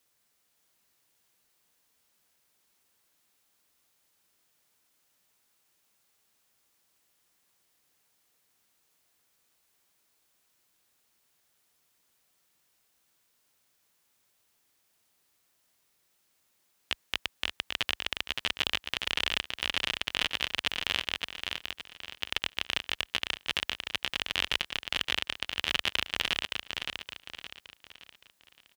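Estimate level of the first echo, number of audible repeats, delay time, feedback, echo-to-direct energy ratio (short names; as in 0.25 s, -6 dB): -5.0 dB, 4, 0.568 s, 39%, -4.5 dB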